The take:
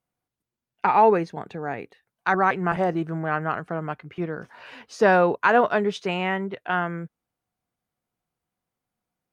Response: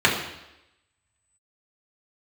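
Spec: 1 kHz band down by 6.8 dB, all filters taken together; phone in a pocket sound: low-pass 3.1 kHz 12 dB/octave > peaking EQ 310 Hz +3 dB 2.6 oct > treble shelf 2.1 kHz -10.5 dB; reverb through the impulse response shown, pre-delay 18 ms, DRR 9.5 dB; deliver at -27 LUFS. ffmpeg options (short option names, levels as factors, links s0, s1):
-filter_complex "[0:a]equalizer=f=1000:t=o:g=-9,asplit=2[s0][s1];[1:a]atrim=start_sample=2205,adelay=18[s2];[s1][s2]afir=irnorm=-1:irlink=0,volume=0.0316[s3];[s0][s3]amix=inputs=2:normalize=0,lowpass=3100,equalizer=f=310:t=o:w=2.6:g=3,highshelf=f=2100:g=-10.5,volume=0.794"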